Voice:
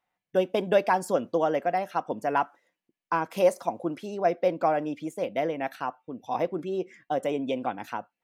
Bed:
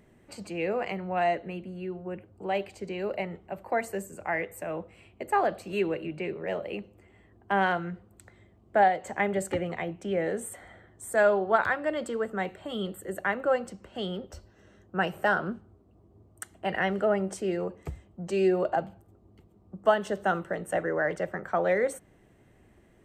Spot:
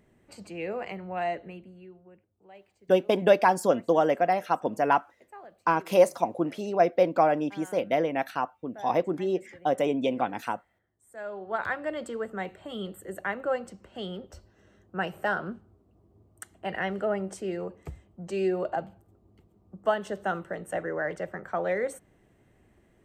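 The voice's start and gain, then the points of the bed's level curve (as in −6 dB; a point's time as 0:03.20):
2.55 s, +2.5 dB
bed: 0:01.44 −4 dB
0:02.33 −22 dB
0:11.04 −22 dB
0:11.70 −3 dB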